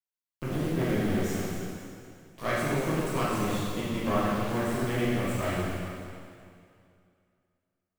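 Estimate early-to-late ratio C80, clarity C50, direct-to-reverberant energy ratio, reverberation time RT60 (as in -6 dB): -1.0 dB, -3.5 dB, -9.0 dB, 2.4 s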